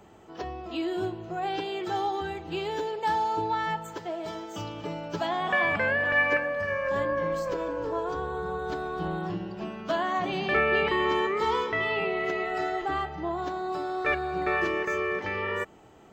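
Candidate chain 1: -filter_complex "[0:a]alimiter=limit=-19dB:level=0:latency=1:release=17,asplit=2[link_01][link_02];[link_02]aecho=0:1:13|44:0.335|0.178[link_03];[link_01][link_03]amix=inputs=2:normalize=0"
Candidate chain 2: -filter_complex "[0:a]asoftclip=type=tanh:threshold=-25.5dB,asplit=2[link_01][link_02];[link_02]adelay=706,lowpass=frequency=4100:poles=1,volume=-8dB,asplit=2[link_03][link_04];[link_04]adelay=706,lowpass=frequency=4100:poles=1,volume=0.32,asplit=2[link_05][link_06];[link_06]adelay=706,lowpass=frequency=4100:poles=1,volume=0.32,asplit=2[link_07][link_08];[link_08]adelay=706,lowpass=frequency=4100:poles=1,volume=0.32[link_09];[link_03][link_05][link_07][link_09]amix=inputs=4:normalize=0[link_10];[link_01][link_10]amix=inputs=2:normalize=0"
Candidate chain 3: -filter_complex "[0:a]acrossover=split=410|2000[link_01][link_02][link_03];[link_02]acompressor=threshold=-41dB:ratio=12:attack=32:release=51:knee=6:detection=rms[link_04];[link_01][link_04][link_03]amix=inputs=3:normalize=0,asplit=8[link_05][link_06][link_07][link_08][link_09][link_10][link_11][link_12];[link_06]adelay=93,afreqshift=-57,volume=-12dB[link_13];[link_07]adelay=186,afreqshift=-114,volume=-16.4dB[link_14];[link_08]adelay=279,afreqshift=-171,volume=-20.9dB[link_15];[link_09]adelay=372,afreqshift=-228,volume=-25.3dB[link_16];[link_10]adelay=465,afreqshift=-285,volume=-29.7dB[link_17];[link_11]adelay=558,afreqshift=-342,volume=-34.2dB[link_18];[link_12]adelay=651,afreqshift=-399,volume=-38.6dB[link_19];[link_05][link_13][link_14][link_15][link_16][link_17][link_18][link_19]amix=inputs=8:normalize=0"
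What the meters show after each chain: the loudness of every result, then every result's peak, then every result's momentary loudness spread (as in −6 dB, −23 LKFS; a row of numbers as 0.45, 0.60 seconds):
−29.5, −31.0, −33.0 LKFS; −16.5, −22.5, −16.5 dBFS; 9, 7, 8 LU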